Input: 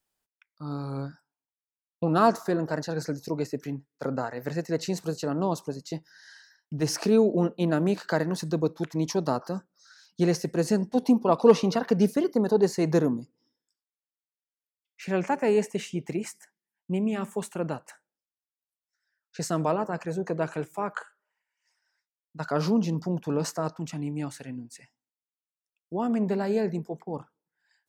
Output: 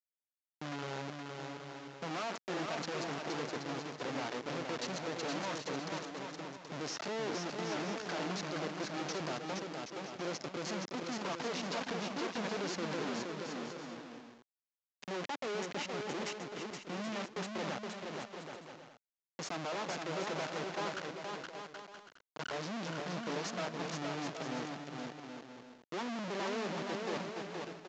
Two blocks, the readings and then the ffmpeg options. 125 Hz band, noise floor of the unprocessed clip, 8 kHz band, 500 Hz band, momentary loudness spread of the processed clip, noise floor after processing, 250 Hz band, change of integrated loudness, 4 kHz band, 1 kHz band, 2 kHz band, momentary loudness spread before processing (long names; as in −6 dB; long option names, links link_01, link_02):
−14.5 dB, below −85 dBFS, −6.0 dB, −12.5 dB, 9 LU, below −85 dBFS, −14.0 dB, −12.5 dB, −0.5 dB, −7.5 dB, −2.0 dB, 14 LU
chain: -filter_complex "[0:a]anlmdn=0.631,adynamicequalizer=threshold=0.0158:dfrequency=410:dqfactor=1.5:tfrequency=410:tqfactor=1.5:attack=5:release=100:ratio=0.375:range=2.5:mode=cutabove:tftype=bell,acompressor=threshold=-23dB:ratio=6,alimiter=level_in=0.5dB:limit=-24dB:level=0:latency=1:release=68,volume=-0.5dB,asoftclip=type=tanh:threshold=-34.5dB,acrusher=bits=4:dc=4:mix=0:aa=0.000001,highpass=230,lowpass=6300,asplit=2[link_01][link_02];[link_02]aecho=0:1:470|775.5|974.1|1103|1187:0.631|0.398|0.251|0.158|0.1[link_03];[link_01][link_03]amix=inputs=2:normalize=0,volume=5dB" -ar 16000 -c:a pcm_mulaw